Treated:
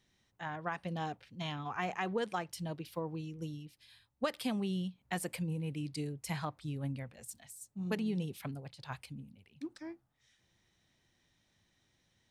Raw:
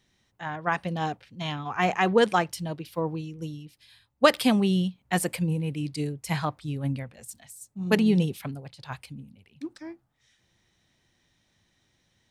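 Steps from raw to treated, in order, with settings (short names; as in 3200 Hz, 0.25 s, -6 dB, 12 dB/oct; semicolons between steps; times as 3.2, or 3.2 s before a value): compressor 2.5:1, threshold -31 dBFS, peak gain reduction 12.5 dB; gain -5 dB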